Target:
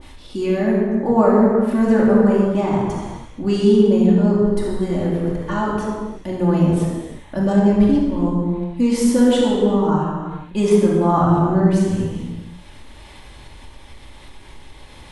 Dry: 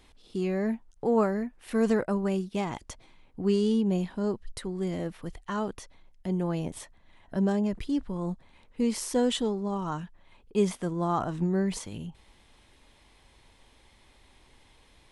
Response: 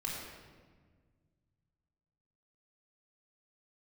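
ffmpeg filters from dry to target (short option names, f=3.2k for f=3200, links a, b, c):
-filter_complex "[1:a]atrim=start_sample=2205,afade=t=out:st=0.43:d=0.01,atrim=end_sample=19404,asetrate=31752,aresample=44100[a];[0:a][a]afir=irnorm=-1:irlink=0,acompressor=mode=upward:threshold=-40dB:ratio=2.5,adynamicequalizer=threshold=0.00708:dfrequency=1600:dqfactor=0.7:tfrequency=1600:tqfactor=0.7:attack=5:release=100:ratio=0.375:range=4:mode=cutabove:tftype=highshelf,volume=7.5dB"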